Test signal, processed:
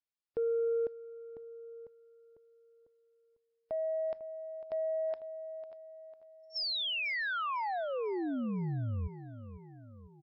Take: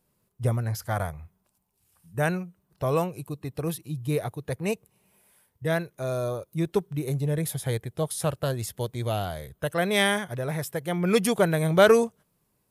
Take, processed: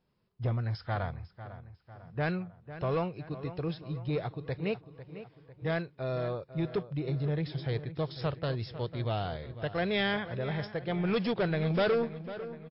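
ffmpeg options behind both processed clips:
ffmpeg -i in.wav -filter_complex "[0:a]equalizer=frequency=590:width=7.7:gain=-2.5,asoftclip=type=tanh:threshold=-20.5dB,asplit=2[link_01][link_02];[link_02]adelay=499,lowpass=frequency=3000:poles=1,volume=-13dB,asplit=2[link_03][link_04];[link_04]adelay=499,lowpass=frequency=3000:poles=1,volume=0.53,asplit=2[link_05][link_06];[link_06]adelay=499,lowpass=frequency=3000:poles=1,volume=0.53,asplit=2[link_07][link_08];[link_08]adelay=499,lowpass=frequency=3000:poles=1,volume=0.53,asplit=2[link_09][link_10];[link_10]adelay=499,lowpass=frequency=3000:poles=1,volume=0.53[link_11];[link_01][link_03][link_05][link_07][link_09][link_11]amix=inputs=6:normalize=0,volume=-2.5dB" -ar 12000 -c:a libmp3lame -b:a 32k out.mp3

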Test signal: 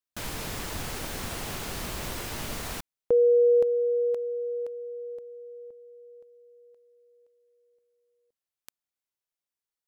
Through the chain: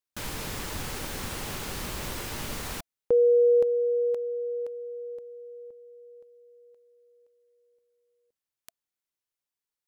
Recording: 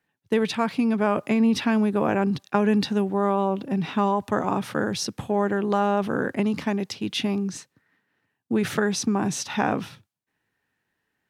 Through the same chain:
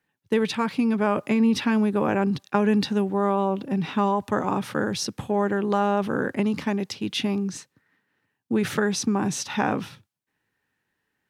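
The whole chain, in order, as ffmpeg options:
ffmpeg -i in.wav -af "bandreject=frequency=680:width=12" out.wav

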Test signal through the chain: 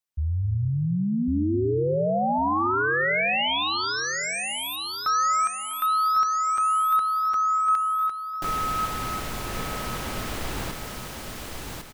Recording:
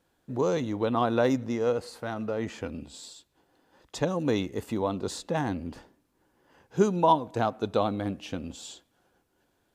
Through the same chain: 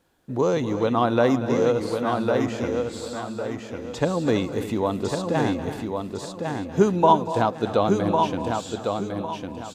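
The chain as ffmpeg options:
ffmpeg -i in.wav -filter_complex "[0:a]asplit=2[link_01][link_02];[link_02]aecho=0:1:1103|2206|3309|4412:0.562|0.163|0.0473|0.0137[link_03];[link_01][link_03]amix=inputs=2:normalize=0,acrossover=split=3300[link_04][link_05];[link_05]acompressor=threshold=-41dB:ratio=4:attack=1:release=60[link_06];[link_04][link_06]amix=inputs=2:normalize=0,asplit=2[link_07][link_08];[link_08]aecho=0:1:240|263|328:0.188|0.141|0.2[link_09];[link_07][link_09]amix=inputs=2:normalize=0,volume=4.5dB" out.wav

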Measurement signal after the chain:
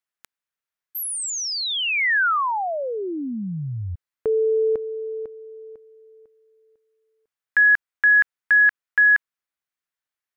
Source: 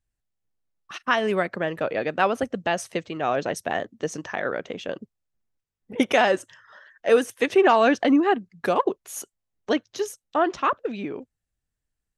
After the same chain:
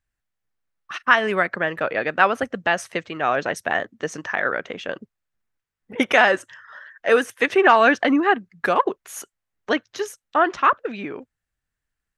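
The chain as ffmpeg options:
ffmpeg -i in.wav -af "equalizer=frequency=1600:width=0.84:gain=9.5,volume=-1dB" out.wav

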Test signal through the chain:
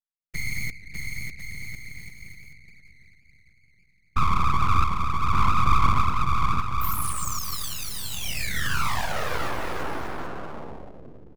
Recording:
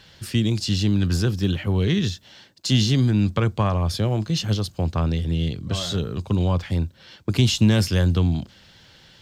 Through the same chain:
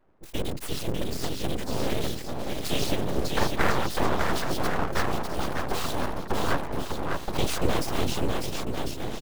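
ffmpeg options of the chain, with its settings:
ffmpeg -i in.wav -filter_complex "[0:a]highpass=97,acrossover=split=480|1000[link_01][link_02][link_03];[link_02]dynaudnorm=framelen=290:gausssize=13:maxgain=16dB[link_04];[link_03]acrusher=bits=4:mix=0:aa=0.000001[link_05];[link_01][link_04][link_05]amix=inputs=3:normalize=0,afftfilt=real='hypot(re,im)*cos(2*PI*random(0))':imag='hypot(re,im)*sin(2*PI*random(1))':win_size=512:overlap=0.75,aecho=1:1:600|1050|1388|1641|1830:0.631|0.398|0.251|0.158|0.1,aeval=exprs='abs(val(0))':channel_layout=same" out.wav

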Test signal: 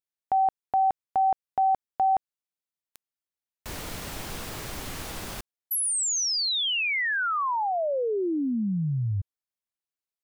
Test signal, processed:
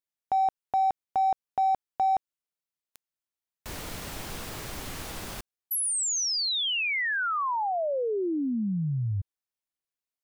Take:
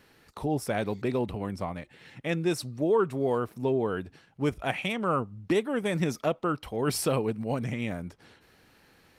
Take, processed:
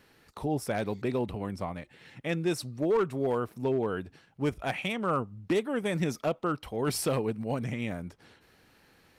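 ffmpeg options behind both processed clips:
ffmpeg -i in.wav -af "asoftclip=type=hard:threshold=-19dB,volume=-1.5dB" out.wav

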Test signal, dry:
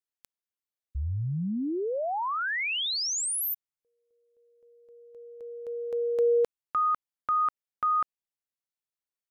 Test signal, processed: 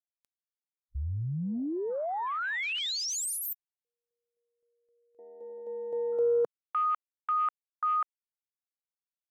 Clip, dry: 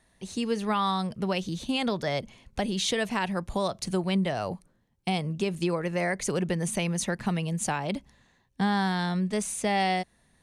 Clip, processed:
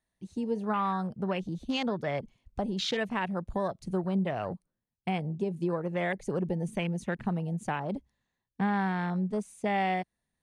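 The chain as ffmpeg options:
ffmpeg -i in.wav -af "afwtdn=0.0178,volume=-2.5dB" out.wav

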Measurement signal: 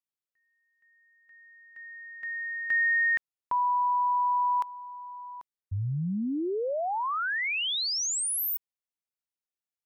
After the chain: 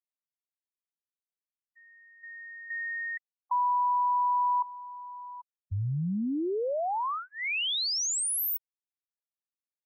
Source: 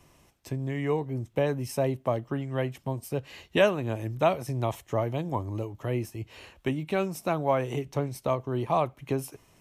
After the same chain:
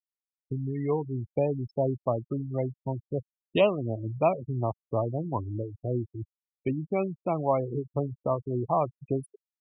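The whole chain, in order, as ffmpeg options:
ffmpeg -i in.wav -af "afftfilt=real='re*gte(hypot(re,im),0.0562)':imag='im*gte(hypot(re,im),0.0562)':win_size=1024:overlap=0.75,asuperstop=centerf=1600:order=4:qfactor=2" out.wav

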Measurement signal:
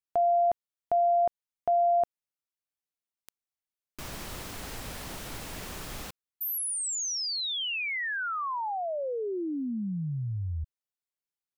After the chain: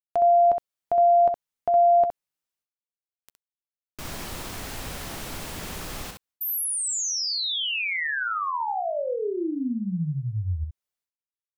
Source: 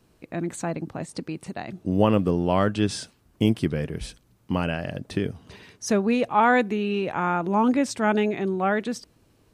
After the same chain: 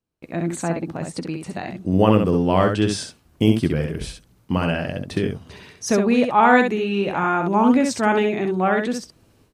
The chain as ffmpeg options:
ffmpeg -i in.wav -af "aecho=1:1:12|65:0.224|0.562,agate=range=-27dB:threshold=-44dB:ratio=3:release=378:detection=rms,volume=3dB" out.wav

